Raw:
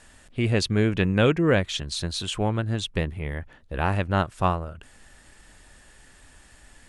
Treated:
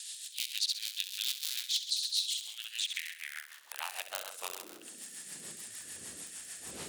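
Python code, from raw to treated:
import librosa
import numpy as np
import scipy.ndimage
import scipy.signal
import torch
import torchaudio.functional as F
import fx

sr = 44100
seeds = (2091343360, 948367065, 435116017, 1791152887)

y = fx.cycle_switch(x, sr, every=3, mode='inverted')
y = fx.dmg_wind(y, sr, seeds[0], corner_hz=250.0, level_db=-34.0)
y = np.diff(y, prepend=0.0)
y = fx.room_flutter(y, sr, wall_m=11.3, rt60_s=0.61)
y = fx.rotary(y, sr, hz=6.7)
y = fx.peak_eq(y, sr, hz=69.0, db=11.0, octaves=0.44)
y = fx.filter_sweep_highpass(y, sr, from_hz=3800.0, to_hz=61.0, start_s=2.44, end_s=6.25, q=3.3)
y = fx.band_squash(y, sr, depth_pct=70)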